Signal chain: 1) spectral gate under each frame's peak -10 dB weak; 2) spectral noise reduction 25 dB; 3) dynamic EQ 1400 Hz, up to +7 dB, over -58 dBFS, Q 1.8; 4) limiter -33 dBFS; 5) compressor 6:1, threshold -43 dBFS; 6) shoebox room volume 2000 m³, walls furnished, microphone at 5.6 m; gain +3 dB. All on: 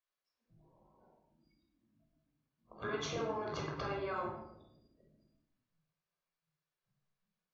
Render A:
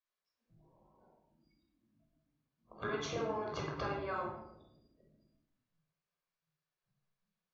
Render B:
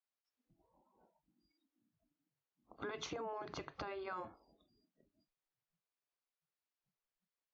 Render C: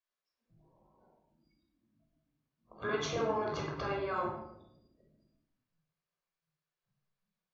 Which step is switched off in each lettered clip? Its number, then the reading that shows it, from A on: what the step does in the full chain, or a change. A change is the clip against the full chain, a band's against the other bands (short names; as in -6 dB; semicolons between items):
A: 4, mean gain reduction 2.0 dB; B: 6, echo-to-direct 1.5 dB to none; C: 5, mean gain reduction 2.0 dB